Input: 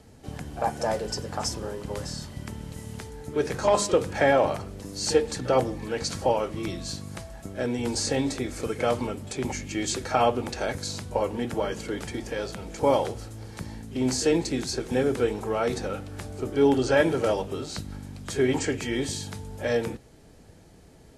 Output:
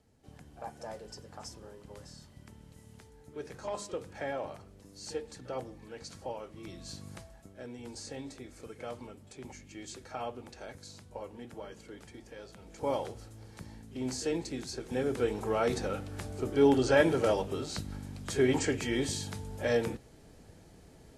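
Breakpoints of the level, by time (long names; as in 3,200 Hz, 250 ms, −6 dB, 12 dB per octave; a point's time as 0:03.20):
0:06.53 −16 dB
0:07.09 −7.5 dB
0:07.55 −16.5 dB
0:12.48 −16.5 dB
0:12.91 −10 dB
0:14.77 −10 dB
0:15.49 −3 dB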